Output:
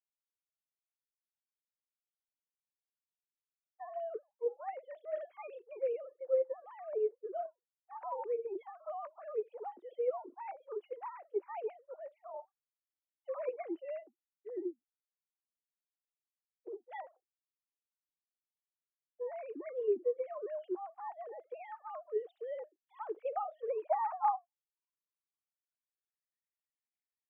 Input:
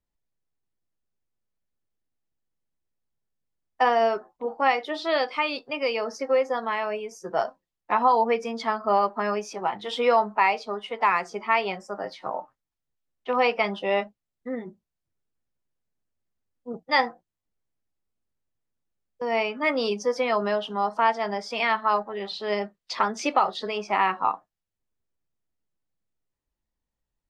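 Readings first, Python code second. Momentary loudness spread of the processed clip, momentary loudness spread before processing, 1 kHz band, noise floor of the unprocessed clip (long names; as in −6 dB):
15 LU, 12 LU, −16.5 dB, below −85 dBFS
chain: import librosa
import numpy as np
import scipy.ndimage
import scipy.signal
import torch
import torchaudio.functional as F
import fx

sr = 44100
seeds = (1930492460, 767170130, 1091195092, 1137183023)

y = fx.sine_speech(x, sr)
y = fx.rider(y, sr, range_db=4, speed_s=0.5)
y = fx.filter_sweep_bandpass(y, sr, from_hz=350.0, to_hz=2200.0, start_s=22.63, end_s=26.63, q=7.3)
y = y * librosa.db_to_amplitude(3.0)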